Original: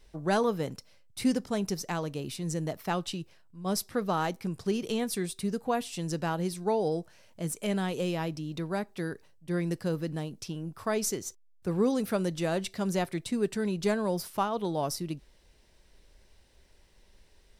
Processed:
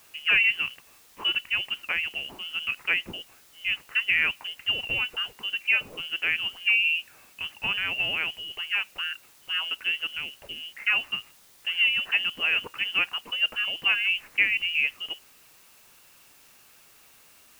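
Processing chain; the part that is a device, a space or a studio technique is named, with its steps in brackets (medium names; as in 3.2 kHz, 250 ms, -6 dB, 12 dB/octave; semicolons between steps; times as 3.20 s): scrambled radio voice (band-pass 400–2700 Hz; frequency inversion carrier 3.2 kHz; white noise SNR 27 dB); trim +7 dB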